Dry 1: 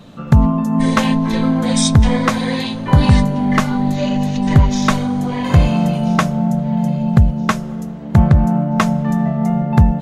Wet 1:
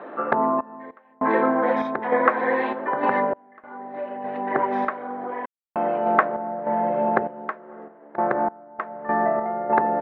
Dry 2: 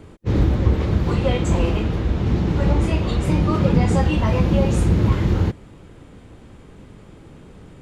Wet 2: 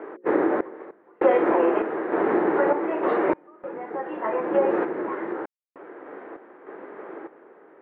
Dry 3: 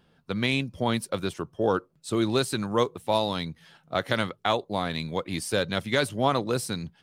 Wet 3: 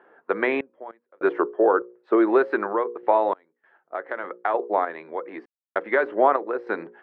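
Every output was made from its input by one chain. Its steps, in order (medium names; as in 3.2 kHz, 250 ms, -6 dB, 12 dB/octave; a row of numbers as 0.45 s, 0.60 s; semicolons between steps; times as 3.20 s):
elliptic band-pass 350–1800 Hz, stop band 70 dB; hum notches 60/120/180/240/300/360/420/480/540 Hz; compression 2.5:1, threshold -30 dBFS; random-step tremolo 3.3 Hz, depth 100%; normalise loudness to -24 LUFS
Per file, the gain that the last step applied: +11.5 dB, +13.0 dB, +14.5 dB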